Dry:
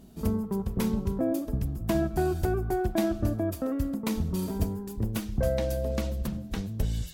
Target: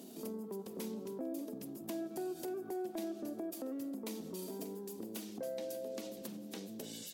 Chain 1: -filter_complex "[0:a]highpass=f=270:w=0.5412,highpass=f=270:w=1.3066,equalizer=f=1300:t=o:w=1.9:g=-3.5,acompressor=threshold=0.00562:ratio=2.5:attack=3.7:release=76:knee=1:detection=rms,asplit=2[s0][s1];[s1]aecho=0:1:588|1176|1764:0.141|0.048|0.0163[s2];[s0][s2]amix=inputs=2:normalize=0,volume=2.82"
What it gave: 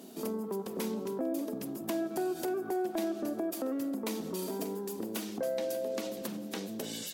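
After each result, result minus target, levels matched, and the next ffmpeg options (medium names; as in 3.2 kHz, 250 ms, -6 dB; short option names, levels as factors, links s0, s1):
compression: peak gain reduction -6 dB; 1 kHz band +2.5 dB
-filter_complex "[0:a]highpass=f=270:w=0.5412,highpass=f=270:w=1.3066,equalizer=f=1300:t=o:w=1.9:g=-3.5,acompressor=threshold=0.0015:ratio=2.5:attack=3.7:release=76:knee=1:detection=rms,asplit=2[s0][s1];[s1]aecho=0:1:588|1176|1764:0.141|0.048|0.0163[s2];[s0][s2]amix=inputs=2:normalize=0,volume=2.82"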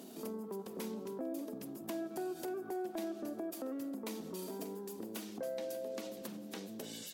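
1 kHz band +2.5 dB
-filter_complex "[0:a]highpass=f=270:w=0.5412,highpass=f=270:w=1.3066,equalizer=f=1300:t=o:w=1.9:g=-10,acompressor=threshold=0.0015:ratio=2.5:attack=3.7:release=76:knee=1:detection=rms,asplit=2[s0][s1];[s1]aecho=0:1:588|1176|1764:0.141|0.048|0.0163[s2];[s0][s2]amix=inputs=2:normalize=0,volume=2.82"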